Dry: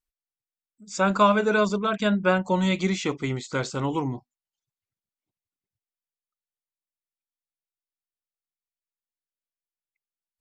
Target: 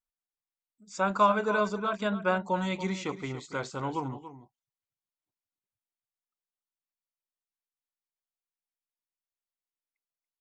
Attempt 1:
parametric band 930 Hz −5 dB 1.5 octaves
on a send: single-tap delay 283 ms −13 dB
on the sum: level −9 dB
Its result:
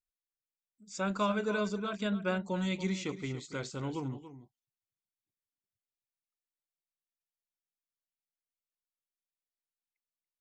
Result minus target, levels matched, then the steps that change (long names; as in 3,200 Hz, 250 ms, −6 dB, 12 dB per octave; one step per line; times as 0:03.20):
1,000 Hz band −5.5 dB
change: parametric band 930 Hz +6.5 dB 1.5 octaves